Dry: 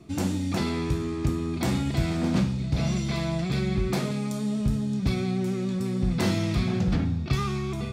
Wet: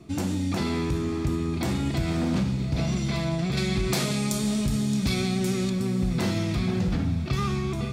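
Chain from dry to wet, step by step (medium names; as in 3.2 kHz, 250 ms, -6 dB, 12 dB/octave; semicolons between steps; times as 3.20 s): peak limiter -19.5 dBFS, peak gain reduction 4 dB; 3.57–5.70 s: treble shelf 2.3 kHz +11.5 dB; echo that smears into a reverb 576 ms, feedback 53%, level -14.5 dB; trim +1.5 dB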